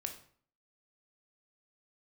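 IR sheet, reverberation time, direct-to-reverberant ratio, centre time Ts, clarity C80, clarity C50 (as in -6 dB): 0.50 s, 4.5 dB, 13 ms, 13.5 dB, 9.5 dB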